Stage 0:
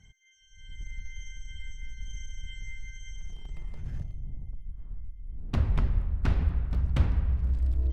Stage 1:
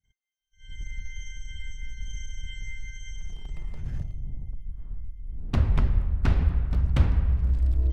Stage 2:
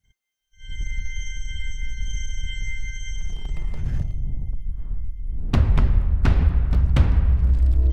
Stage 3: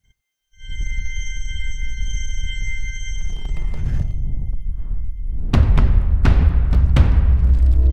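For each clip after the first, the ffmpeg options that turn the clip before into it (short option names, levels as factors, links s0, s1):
-af "agate=range=0.0224:threshold=0.00794:ratio=3:detection=peak,volume=1.5"
-af "acompressor=threshold=0.0501:ratio=1.5,volume=2.51"
-af "aecho=1:1:92:0.0841,volume=1.58"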